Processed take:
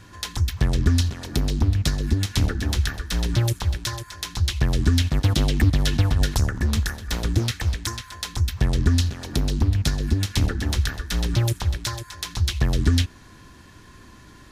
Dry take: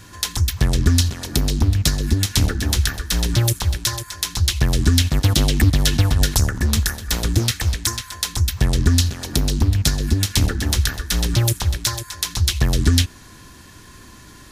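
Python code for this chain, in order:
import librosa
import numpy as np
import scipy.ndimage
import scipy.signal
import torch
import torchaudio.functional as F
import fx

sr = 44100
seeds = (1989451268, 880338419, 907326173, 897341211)

y = fx.high_shelf(x, sr, hz=5400.0, db=-10.5)
y = y * librosa.db_to_amplitude(-3.0)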